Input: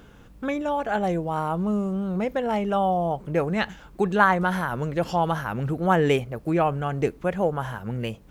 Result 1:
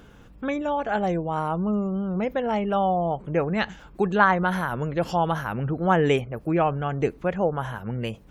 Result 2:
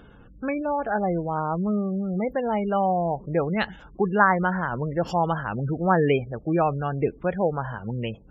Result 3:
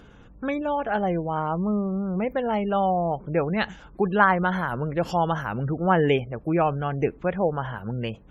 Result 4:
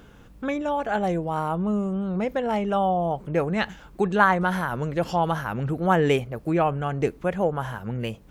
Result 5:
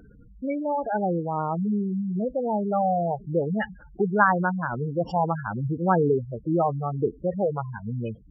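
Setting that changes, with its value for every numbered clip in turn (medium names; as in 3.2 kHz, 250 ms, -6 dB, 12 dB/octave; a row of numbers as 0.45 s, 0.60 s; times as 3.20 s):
spectral gate, under each frame's peak: -45 dB, -25 dB, -35 dB, -60 dB, -10 dB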